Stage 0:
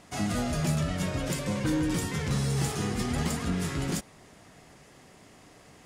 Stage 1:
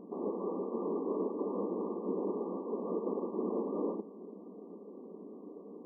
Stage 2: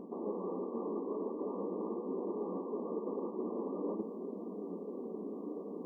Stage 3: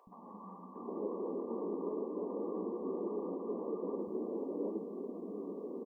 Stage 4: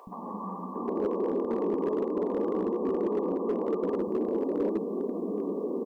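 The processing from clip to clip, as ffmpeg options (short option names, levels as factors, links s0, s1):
-af "aeval=exprs='(mod(33.5*val(0)+1,2)-1)/33.5':c=same,lowshelf=f=550:t=q:w=3:g=7,afftfilt=real='re*between(b*sr/4096,180,1200)':imag='im*between(b*sr/4096,180,1200)':win_size=4096:overlap=0.75"
-af "areverse,acompressor=threshold=0.00631:ratio=4,areverse,flanger=delay=7.5:depth=7.3:regen=65:speed=0.47:shape=triangular,volume=3.76"
-filter_complex "[0:a]acrossover=split=190|850[s0][s1][s2];[s0]adelay=70[s3];[s1]adelay=760[s4];[s3][s4][s2]amix=inputs=3:normalize=0,volume=1.12"
-filter_complex "[0:a]asplit=2[s0][s1];[s1]acompressor=threshold=0.00501:ratio=16,volume=1[s2];[s0][s2]amix=inputs=2:normalize=0,volume=31.6,asoftclip=hard,volume=0.0316,volume=2.51"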